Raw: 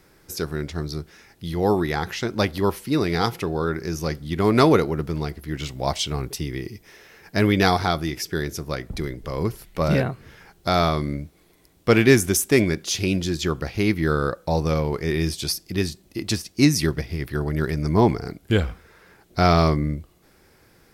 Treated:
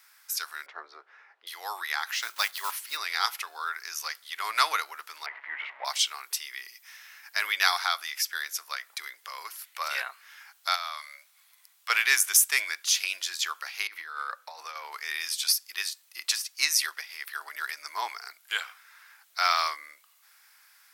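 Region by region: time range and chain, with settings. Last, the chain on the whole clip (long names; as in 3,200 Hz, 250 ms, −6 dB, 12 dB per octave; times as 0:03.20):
0:00.66–0:01.47: low-pass filter 1,500 Hz + parametric band 440 Hz +13.5 dB 1.7 octaves
0:02.13–0:02.98: one scale factor per block 5 bits + one half of a high-frequency compander decoder only
0:05.26–0:05.85: converter with a step at zero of −34.5 dBFS + loudspeaker in its box 230–2,300 Hz, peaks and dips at 280 Hz +9 dB, 410 Hz +4 dB, 590 Hz +9 dB, 910 Hz +7 dB, 1,400 Hz −3 dB, 2,000 Hz +8 dB
0:10.75–0:11.90: Chebyshev high-pass filter 540 Hz, order 10 + downward compressor, threshold −27 dBFS
0:13.87–0:14.92: Chebyshev high-pass filter 270 Hz + high-shelf EQ 3,400 Hz −8.5 dB + compressor whose output falls as the input rises −26 dBFS, ratio −0.5
whole clip: high-pass filter 1,100 Hz 24 dB per octave; high-shelf EQ 8,600 Hz +6 dB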